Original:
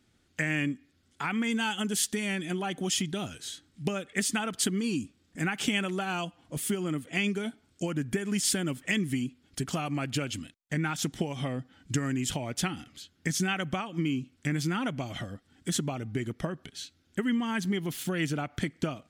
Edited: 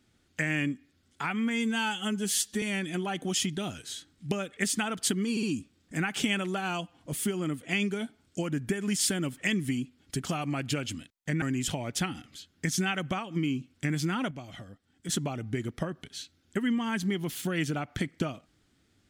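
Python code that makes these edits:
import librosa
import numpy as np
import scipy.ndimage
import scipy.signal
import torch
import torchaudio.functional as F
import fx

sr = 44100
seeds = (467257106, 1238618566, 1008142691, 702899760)

y = fx.edit(x, sr, fx.stretch_span(start_s=1.3, length_s=0.88, factor=1.5),
    fx.stutter(start_s=4.87, slice_s=0.06, count=3),
    fx.cut(start_s=10.86, length_s=1.18),
    fx.clip_gain(start_s=14.93, length_s=0.78, db=-7.5), tone=tone)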